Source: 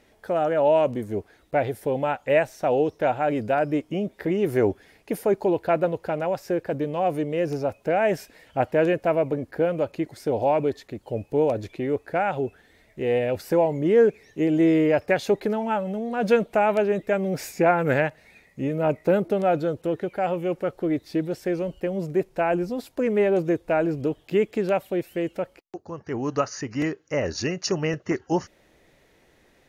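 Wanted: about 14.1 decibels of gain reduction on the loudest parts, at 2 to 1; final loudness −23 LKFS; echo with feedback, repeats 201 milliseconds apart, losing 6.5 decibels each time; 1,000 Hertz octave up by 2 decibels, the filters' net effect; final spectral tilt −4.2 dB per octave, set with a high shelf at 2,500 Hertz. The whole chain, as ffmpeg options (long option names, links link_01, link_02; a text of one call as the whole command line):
ffmpeg -i in.wav -af "equalizer=frequency=1000:width_type=o:gain=4,highshelf=frequency=2500:gain=-7,acompressor=threshold=-41dB:ratio=2,aecho=1:1:201|402|603|804|1005|1206:0.473|0.222|0.105|0.0491|0.0231|0.0109,volume=12dB" out.wav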